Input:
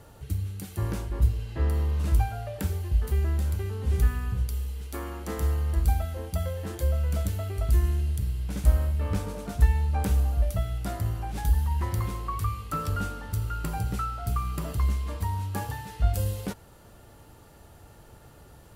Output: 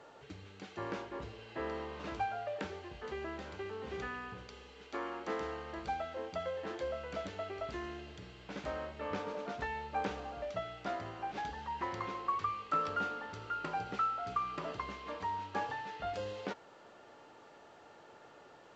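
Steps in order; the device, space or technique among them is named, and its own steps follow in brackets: telephone (BPF 380–3300 Hz; A-law 128 kbps 16000 Hz)

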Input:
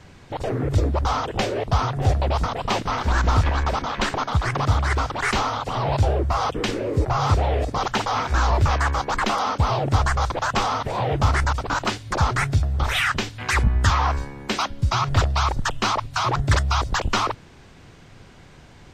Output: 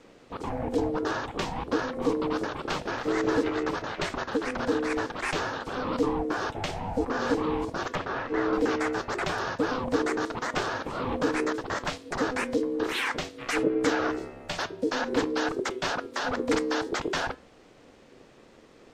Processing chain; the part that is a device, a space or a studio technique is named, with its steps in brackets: 7.95–8.53 Bessel low-pass 2300 Hz, order 2; alien voice (ring modulator 380 Hz; flange 0.51 Hz, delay 6.3 ms, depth 3.4 ms, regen -86%)

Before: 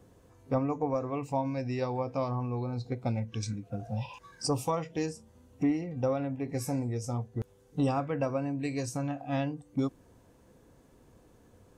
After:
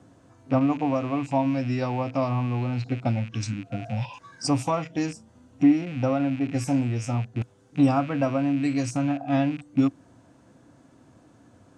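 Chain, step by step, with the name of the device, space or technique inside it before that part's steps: car door speaker with a rattle (rattling part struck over -45 dBFS, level -37 dBFS; speaker cabinet 98–9200 Hz, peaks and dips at 120 Hz +5 dB, 280 Hz +7 dB, 450 Hz -9 dB, 660 Hz +5 dB, 1400 Hz +5 dB); gain +4 dB

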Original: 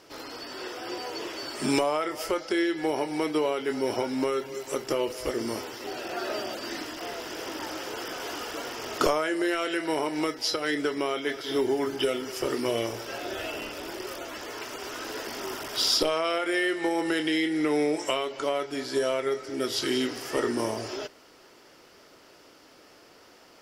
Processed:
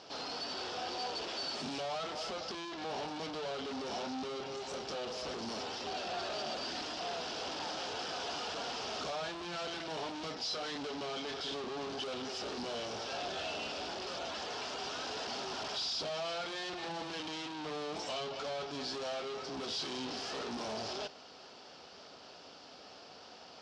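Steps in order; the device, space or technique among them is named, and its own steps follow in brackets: guitar amplifier (tube stage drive 42 dB, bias 0.7; tone controls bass +4 dB, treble +14 dB; speaker cabinet 87–4400 Hz, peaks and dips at 120 Hz -9 dB, 330 Hz -8 dB, 750 Hz +7 dB, 2000 Hz -7 dB); gain +3.5 dB

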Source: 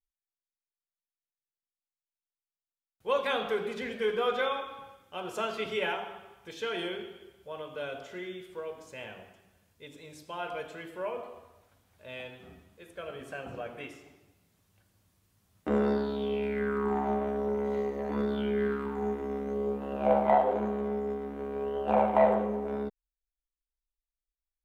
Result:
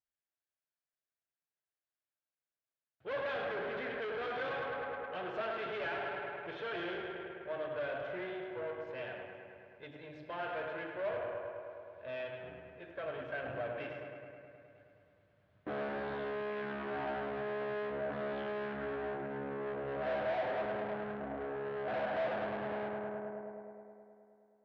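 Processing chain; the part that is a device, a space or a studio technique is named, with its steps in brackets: analogue delay pedal into a guitar amplifier (analogue delay 0.105 s, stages 2048, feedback 77%, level -8.5 dB; tube stage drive 39 dB, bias 0.65; speaker cabinet 79–3400 Hz, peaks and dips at 130 Hz +7 dB, 210 Hz -5 dB, 320 Hz +4 dB, 630 Hz +9 dB, 1600 Hz +8 dB)

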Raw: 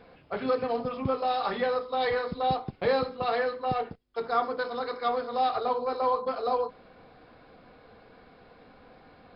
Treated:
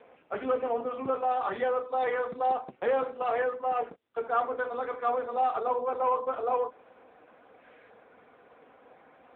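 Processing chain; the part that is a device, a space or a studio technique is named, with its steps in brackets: 1.95–2.75 de-hum 123.2 Hz, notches 5; 7.61–7.9 spectral gain 1500–4000 Hz +7 dB; telephone (BPF 310–3100 Hz; soft clip -17.5 dBFS, distortion -23 dB; gain +1.5 dB; AMR-NB 6.7 kbps 8000 Hz)

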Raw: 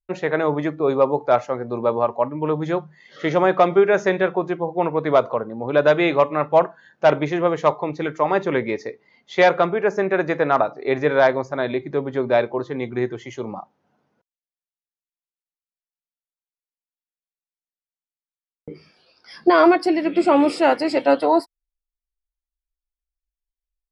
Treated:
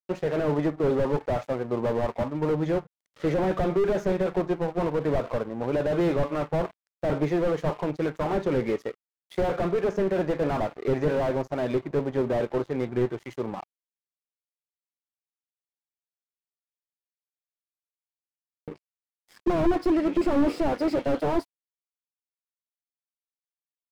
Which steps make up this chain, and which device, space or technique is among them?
bell 5800 Hz -5 dB 2.5 oct; early transistor amplifier (crossover distortion -42 dBFS; slew limiter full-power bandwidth 40 Hz)

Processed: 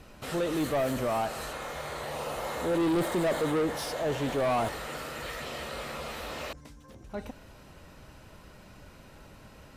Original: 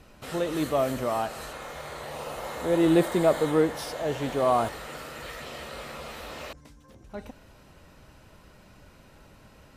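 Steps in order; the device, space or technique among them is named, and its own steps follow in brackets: saturation between pre-emphasis and de-emphasis (high shelf 5300 Hz +8.5 dB; soft clip -25.5 dBFS, distortion -7 dB; high shelf 5300 Hz -8.5 dB); gain +2 dB

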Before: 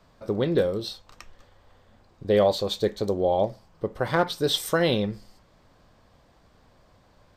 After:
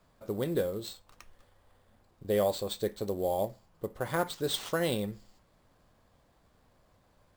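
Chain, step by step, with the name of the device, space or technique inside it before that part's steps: early companding sampler (sample-rate reducer 12000 Hz, jitter 0%; companded quantiser 8-bit); gain -7.5 dB

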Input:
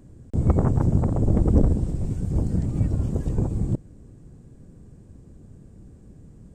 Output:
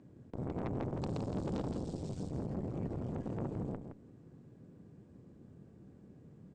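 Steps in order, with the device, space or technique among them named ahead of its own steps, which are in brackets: valve radio (BPF 140–4100 Hz; tube stage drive 28 dB, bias 0.7; core saturation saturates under 320 Hz); 1.01–2.29 resonant high shelf 3000 Hz +12 dB, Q 1.5; echo 0.166 s -8 dB; gain -2 dB

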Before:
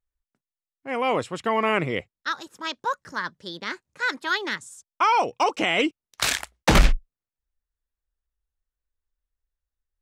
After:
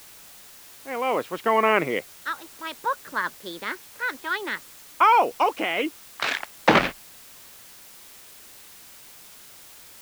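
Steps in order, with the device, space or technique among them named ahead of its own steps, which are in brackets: shortwave radio (BPF 260–2900 Hz; tremolo 0.6 Hz, depth 50%; white noise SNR 20 dB); gain +3.5 dB

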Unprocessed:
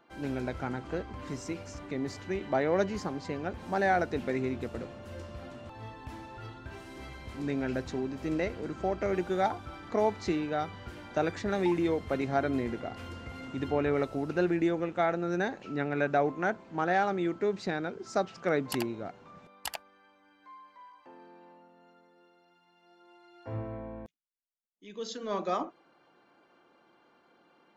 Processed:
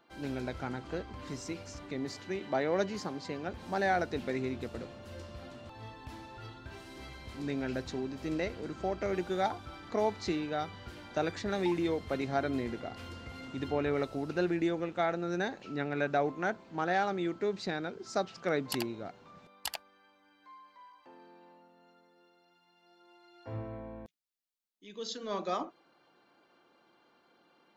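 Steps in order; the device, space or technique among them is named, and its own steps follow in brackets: presence and air boost (bell 4200 Hz +5.5 dB 0.94 oct; high shelf 10000 Hz +4.5 dB); 2.05–3.48 HPF 120 Hz; gain -3 dB

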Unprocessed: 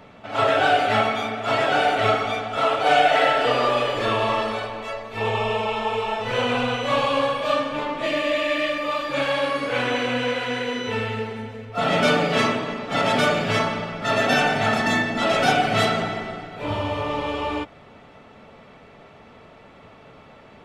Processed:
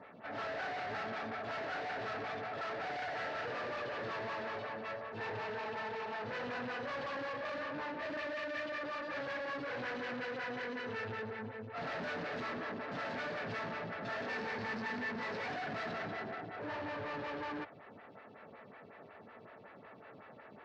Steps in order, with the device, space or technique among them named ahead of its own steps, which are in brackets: 14.27–15.49 ripple EQ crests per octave 0.89, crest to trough 15 dB; vibe pedal into a guitar amplifier (photocell phaser 5.4 Hz; tube stage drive 36 dB, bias 0.5; speaker cabinet 97–4500 Hz, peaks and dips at 110 Hz +4 dB, 1700 Hz +8 dB, 3300 Hz -5 dB); gain -3.5 dB

